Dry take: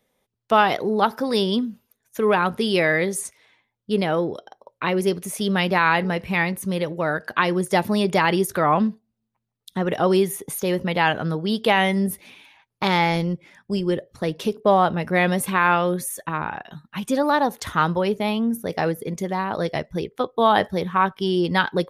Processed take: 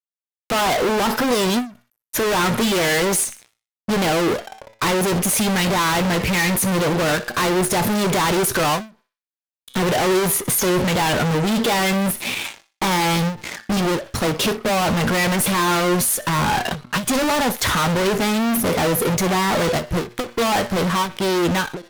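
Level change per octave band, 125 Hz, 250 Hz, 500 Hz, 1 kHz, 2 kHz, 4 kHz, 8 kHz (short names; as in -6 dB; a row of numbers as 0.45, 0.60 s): +4.0, +2.5, +1.0, +0.5, +2.0, +6.0, +12.5 dB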